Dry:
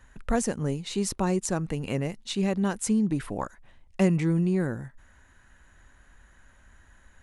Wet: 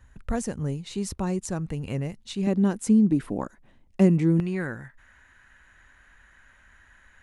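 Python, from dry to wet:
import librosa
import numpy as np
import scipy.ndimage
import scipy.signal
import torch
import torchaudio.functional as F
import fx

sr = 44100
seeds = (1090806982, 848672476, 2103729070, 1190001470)

y = fx.peak_eq(x, sr, hz=fx.steps((0.0, 76.0), (2.47, 260.0), (4.4, 2000.0)), db=11.0, octaves=1.9)
y = F.gain(torch.from_numpy(y), -4.5).numpy()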